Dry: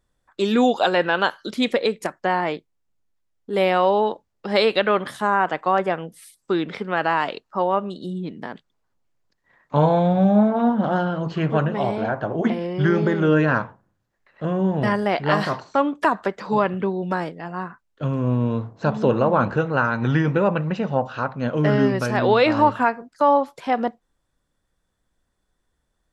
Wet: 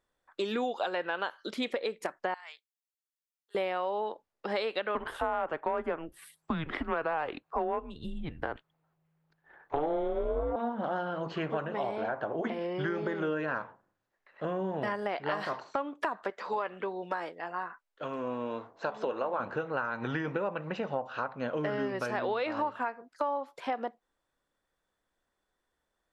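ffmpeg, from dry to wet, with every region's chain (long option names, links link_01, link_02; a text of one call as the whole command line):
ffmpeg -i in.wav -filter_complex "[0:a]asettb=1/sr,asplit=3[link_01][link_02][link_03];[link_01]atrim=end=2.344[link_04];[link_02]atrim=start=2.34:end=3.55,asetpts=PTS-STARTPTS,afade=type=in:duration=0.004:curve=qsin,afade=type=out:start_time=1.206:duration=0.004:curve=qsin,highpass=950,aderivative[link_05];[link_03]atrim=start=3.546[link_06];[link_04][link_05]acrossfade=duration=0.004:curve1=hsin:curve2=qsin[link_07];[link_07][link_06]acrossfade=duration=0.004:curve1=qsin:curve2=hsin,asettb=1/sr,asplit=3[link_08][link_09][link_10];[link_08]atrim=end=4.954[link_11];[link_09]atrim=start=4.95:end=10.56,asetpts=PTS-STARTPTS,afade=type=in:duration=0.004:curve=qsin,afade=type=out:start_time=5.606:duration=0.004:curve=qsin,equalizer=frequency=6100:width_type=o:width=1.7:gain=-11.5,afreqshift=-160,acontrast=75[link_12];[link_10]atrim=start=10.556[link_13];[link_11][link_12]acrossfade=duration=0.004:curve1=hsin:curve2=qsin[link_14];[link_14][link_13]acrossfade=duration=0.004:curve1=qsin:curve2=hsin,asettb=1/sr,asplit=3[link_15][link_16][link_17];[link_15]atrim=end=16.304[link_18];[link_16]atrim=start=16.3:end=19.4,asetpts=PTS-STARTPTS,afade=type=in:duration=0.004:curve=qsin,afade=type=out:start_time=3.096:duration=0.004:curve=qsin,equalizer=frequency=120:width=0.55:gain=-12.5,asplit=2[link_19][link_20];[link_20]adelay=12,volume=-12.5dB[link_21];[link_19][link_21]amix=inputs=2:normalize=0,atrim=end_sample=136710[link_22];[link_17]atrim=start=19.396[link_23];[link_18][link_22]acrossfade=duration=0.004:curve1=hsin:curve2=qsin[link_24];[link_24][link_23]acrossfade=duration=0.004:curve1=qsin:curve2=hsin,bass=frequency=250:gain=-13,treble=frequency=4000:gain=-6,acompressor=threshold=-27dB:ratio=5,volume=-2.5dB" out.wav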